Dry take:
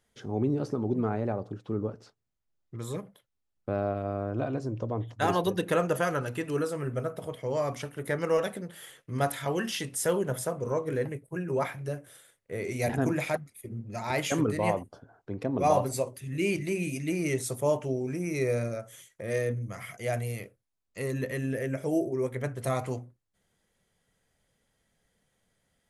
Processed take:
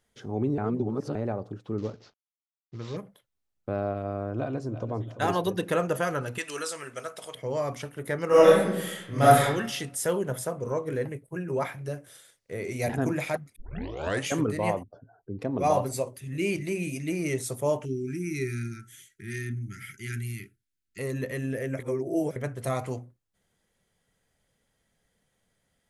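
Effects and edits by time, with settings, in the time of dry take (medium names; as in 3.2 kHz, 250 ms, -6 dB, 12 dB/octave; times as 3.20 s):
0.58–1.15 s: reverse
1.78–2.97 s: CVSD coder 32 kbps
4.34–4.95 s: echo throw 340 ms, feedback 45%, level -13 dB
6.38–7.35 s: frequency weighting ITU-R 468
8.27–9.42 s: reverb throw, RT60 0.83 s, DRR -10.5 dB
11.85–12.52 s: peaking EQ 5.2 kHz +1.5 dB -> +13 dB 1.1 oct
13.56 s: tape start 0.73 s
14.83–15.39 s: spectral contrast enhancement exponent 1.9
17.85–20.99 s: brick-wall FIR band-stop 410–1300 Hz
21.79–22.36 s: reverse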